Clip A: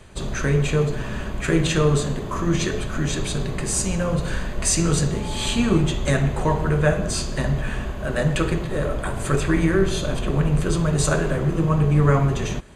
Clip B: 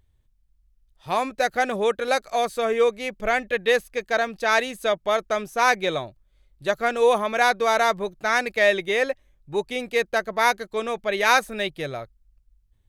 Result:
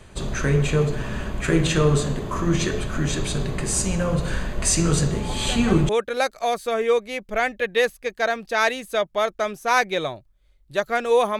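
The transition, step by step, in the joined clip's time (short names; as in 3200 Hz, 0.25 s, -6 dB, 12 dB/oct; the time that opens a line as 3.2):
clip A
5.29 add clip B from 1.2 s 0.60 s -12 dB
5.89 switch to clip B from 1.8 s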